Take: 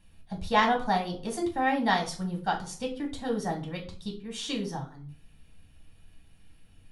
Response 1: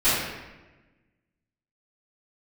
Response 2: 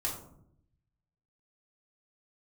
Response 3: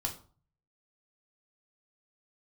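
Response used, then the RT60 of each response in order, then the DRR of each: 3; 1.2, 0.70, 0.40 s; -19.0, -3.0, 1.0 dB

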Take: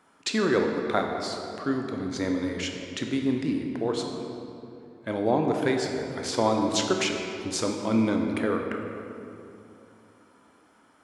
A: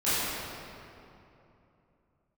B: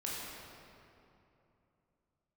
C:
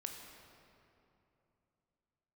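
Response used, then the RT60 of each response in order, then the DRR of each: C; 2.9, 2.9, 2.9 s; -15.5, -6.0, 2.5 dB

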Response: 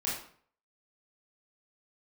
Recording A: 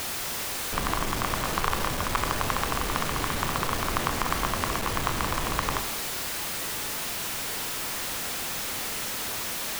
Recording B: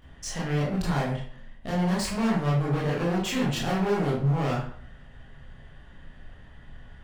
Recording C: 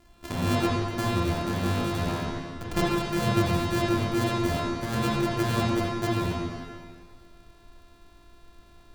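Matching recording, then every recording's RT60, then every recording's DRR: B; 0.90, 0.55, 1.9 s; 8.0, -7.0, -6.0 dB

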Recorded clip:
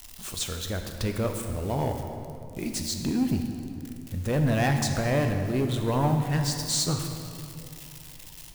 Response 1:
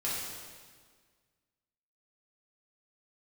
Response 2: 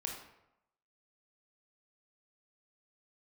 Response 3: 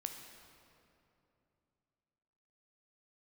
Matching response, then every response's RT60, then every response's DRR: 3; 1.7, 0.85, 2.8 s; -8.5, 0.0, 4.0 dB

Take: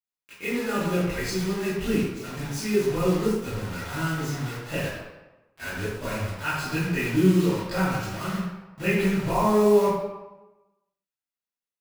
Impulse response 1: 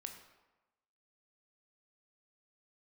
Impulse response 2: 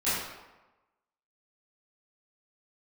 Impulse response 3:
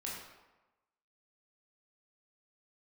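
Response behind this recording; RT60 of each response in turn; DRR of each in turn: 2; 1.1, 1.1, 1.1 s; 4.5, -15.0, -5.0 dB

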